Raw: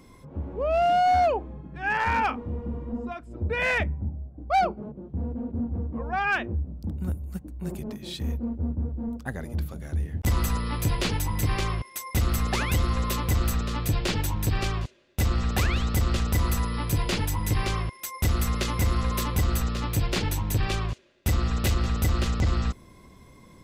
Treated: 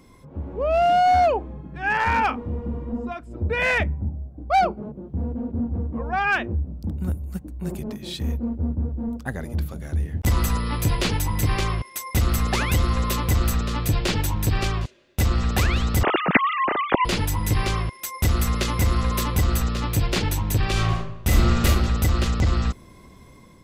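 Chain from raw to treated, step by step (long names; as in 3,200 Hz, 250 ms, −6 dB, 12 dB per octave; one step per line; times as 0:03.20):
0:16.03–0:17.05: three sine waves on the formant tracks
automatic gain control gain up to 3.5 dB
0:20.71–0:21.66: thrown reverb, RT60 0.81 s, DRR −2.5 dB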